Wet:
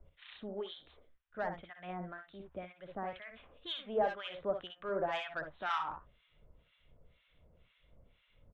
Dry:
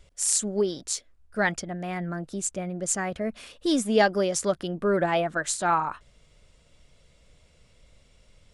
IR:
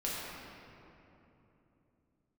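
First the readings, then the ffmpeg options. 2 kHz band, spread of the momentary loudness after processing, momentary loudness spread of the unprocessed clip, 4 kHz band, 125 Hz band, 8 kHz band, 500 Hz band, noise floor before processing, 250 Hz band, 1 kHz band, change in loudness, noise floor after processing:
−13.0 dB, 14 LU, 10 LU, −9.5 dB, −17.5 dB, below −40 dB, −12.0 dB, −60 dBFS, −19.5 dB, −10.5 dB, −13.0 dB, −73 dBFS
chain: -filter_complex "[0:a]acrossover=split=100|490|1800[link_01][link_02][link_03][link_04];[link_02]acompressor=threshold=-44dB:ratio=6[link_05];[link_01][link_05][link_03][link_04]amix=inputs=4:normalize=0,aresample=8000,aresample=44100,asoftclip=type=tanh:threshold=-17.5dB,aecho=1:1:61|74:0.422|0.188,acrossover=split=1100[link_06][link_07];[link_06]aeval=exprs='val(0)*(1-1/2+1/2*cos(2*PI*2*n/s))':channel_layout=same[link_08];[link_07]aeval=exprs='val(0)*(1-1/2-1/2*cos(2*PI*2*n/s))':channel_layout=same[link_09];[link_08][link_09]amix=inputs=2:normalize=0,volume=-3.5dB"

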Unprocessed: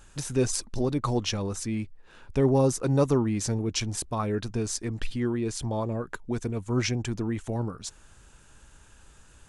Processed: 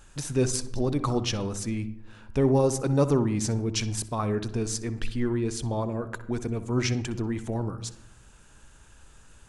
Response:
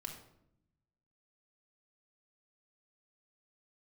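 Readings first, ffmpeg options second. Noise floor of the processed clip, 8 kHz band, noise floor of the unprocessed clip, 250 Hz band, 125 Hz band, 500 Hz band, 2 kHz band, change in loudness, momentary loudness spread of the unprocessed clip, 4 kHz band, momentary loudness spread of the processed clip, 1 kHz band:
−53 dBFS, 0.0 dB, −55 dBFS, +0.5 dB, +0.5 dB, +0.5 dB, 0.0 dB, +0.5 dB, 10 LU, 0.0 dB, 10 LU, +0.5 dB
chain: -filter_complex "[0:a]asplit=2[link_01][link_02];[1:a]atrim=start_sample=2205,highshelf=frequency=3800:gain=-11,adelay=62[link_03];[link_02][link_03]afir=irnorm=-1:irlink=0,volume=-8dB[link_04];[link_01][link_04]amix=inputs=2:normalize=0"

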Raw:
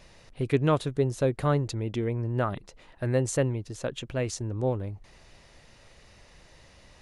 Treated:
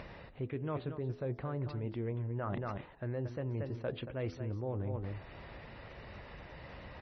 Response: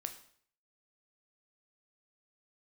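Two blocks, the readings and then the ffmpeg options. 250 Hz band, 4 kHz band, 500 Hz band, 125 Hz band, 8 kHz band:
−10.0 dB, −13.0 dB, −11.0 dB, −8.5 dB, below −30 dB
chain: -af "alimiter=limit=-20dB:level=0:latency=1:release=104,aecho=1:1:230:0.266,areverse,acompressor=threshold=-39dB:ratio=12,areverse,lowpass=2100,acompressor=mode=upward:threshold=-47dB:ratio=2.5,highpass=45,bandreject=frequency=83.54:width_type=h:width=4,bandreject=frequency=167.08:width_type=h:width=4,bandreject=frequency=250.62:width_type=h:width=4,bandreject=frequency=334.16:width_type=h:width=4,bandreject=frequency=417.7:width_type=h:width=4,bandreject=frequency=501.24:width_type=h:width=4,bandreject=frequency=584.78:width_type=h:width=4,bandreject=frequency=668.32:width_type=h:width=4,bandreject=frequency=751.86:width_type=h:width=4,bandreject=frequency=835.4:width_type=h:width=4,volume=6dB" -ar 24000 -c:a libmp3lame -b:a 24k

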